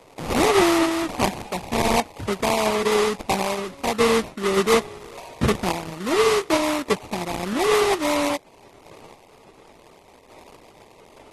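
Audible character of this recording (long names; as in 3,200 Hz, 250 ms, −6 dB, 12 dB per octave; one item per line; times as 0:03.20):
aliases and images of a low sample rate 1,600 Hz, jitter 20%
sample-and-hold tremolo
AAC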